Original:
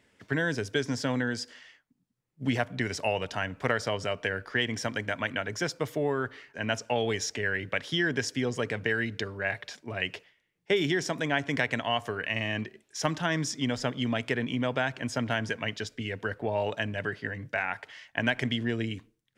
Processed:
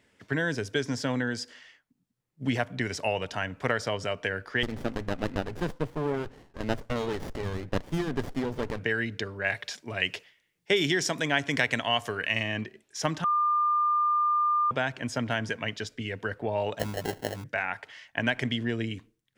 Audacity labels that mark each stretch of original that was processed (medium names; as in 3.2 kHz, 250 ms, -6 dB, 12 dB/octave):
4.630000	8.790000	sliding maximum over 33 samples
9.440000	12.430000	treble shelf 2.5 kHz +7.5 dB
13.240000	14.710000	bleep 1.2 kHz -21.5 dBFS
16.790000	17.440000	sample-rate reducer 1.2 kHz